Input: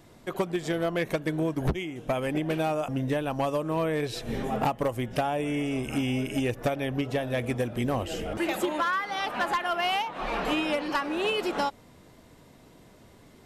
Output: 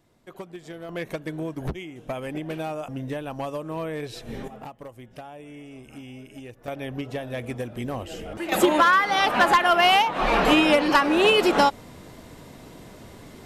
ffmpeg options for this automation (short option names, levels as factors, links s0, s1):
-af "asetnsamples=n=441:p=0,asendcmd='0.89 volume volume -3.5dB;4.48 volume volume -13.5dB;6.68 volume volume -3dB;8.52 volume volume 9.5dB',volume=0.299"